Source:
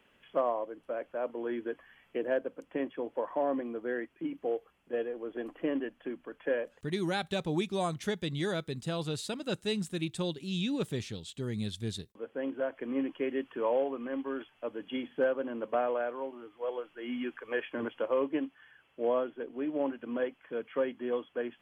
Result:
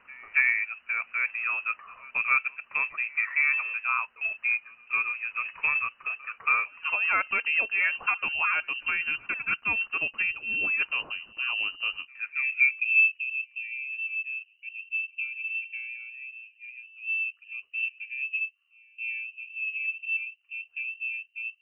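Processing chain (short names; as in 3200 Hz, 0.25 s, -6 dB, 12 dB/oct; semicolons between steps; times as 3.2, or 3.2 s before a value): low-pass sweep 1700 Hz -> 200 Hz, 12.12–13.21; pre-echo 0.277 s -24 dB; inverted band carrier 2900 Hz; gain +4.5 dB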